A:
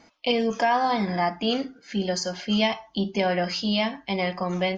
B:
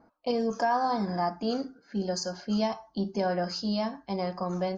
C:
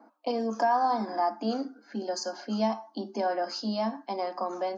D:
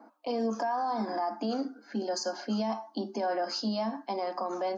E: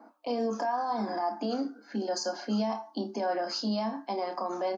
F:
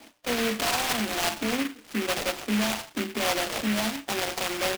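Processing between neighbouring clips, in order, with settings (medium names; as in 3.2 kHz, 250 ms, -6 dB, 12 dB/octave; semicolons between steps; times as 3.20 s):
level-controlled noise filter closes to 1.6 kHz, open at -22.5 dBFS; high-order bell 2.6 kHz -14 dB 1.1 oct; trim -4 dB
in parallel at +2 dB: compression, threshold -35 dBFS, peak gain reduction 12.5 dB; on the sum: rippled Chebyshev high-pass 210 Hz, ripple 6 dB
peak limiter -25 dBFS, peak gain reduction 10 dB; trim +2 dB
doubling 29 ms -9 dB
sample-and-hold 16×; delay time shaken by noise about 2 kHz, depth 0.23 ms; trim +3.5 dB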